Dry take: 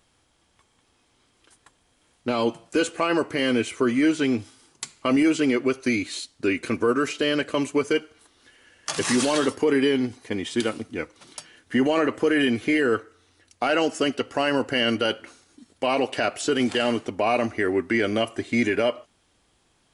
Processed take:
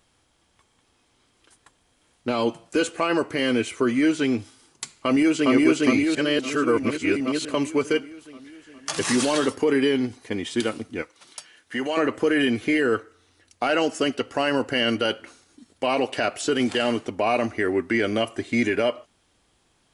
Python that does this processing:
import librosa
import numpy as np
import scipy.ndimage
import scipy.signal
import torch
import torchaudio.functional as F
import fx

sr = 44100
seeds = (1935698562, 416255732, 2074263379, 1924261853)

y = fx.echo_throw(x, sr, start_s=4.92, length_s=0.58, ms=410, feedback_pct=65, wet_db=0.0)
y = fx.low_shelf(y, sr, hz=430.0, db=-12.0, at=(11.02, 11.97))
y = fx.edit(y, sr, fx.reverse_span(start_s=6.15, length_s=1.3), tone=tone)